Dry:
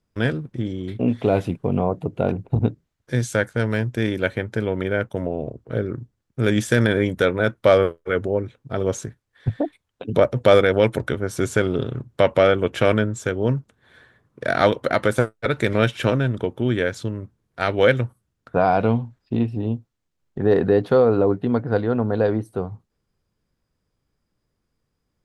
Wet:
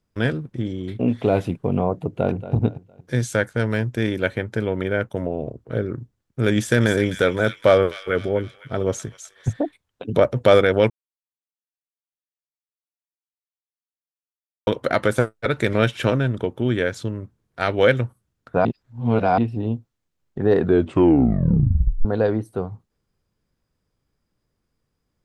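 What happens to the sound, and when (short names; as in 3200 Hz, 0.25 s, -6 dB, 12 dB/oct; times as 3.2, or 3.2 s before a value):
2.11–2.54 echo throw 0.23 s, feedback 35%, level -13.5 dB
6.55–9.53 thin delay 0.255 s, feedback 47%, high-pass 2500 Hz, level -5.5 dB
10.9–14.67 mute
18.65–19.38 reverse
20.58 tape stop 1.47 s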